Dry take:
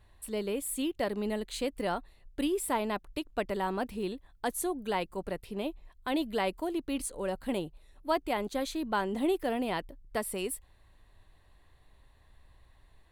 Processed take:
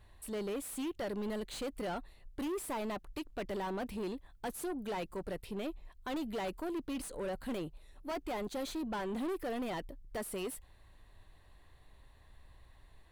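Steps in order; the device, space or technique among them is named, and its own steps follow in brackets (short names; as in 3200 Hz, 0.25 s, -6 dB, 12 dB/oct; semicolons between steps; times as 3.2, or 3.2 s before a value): saturation between pre-emphasis and de-emphasis (high shelf 2800 Hz +10 dB; soft clip -34.5 dBFS, distortion -6 dB; high shelf 2800 Hz -10 dB); gain +1 dB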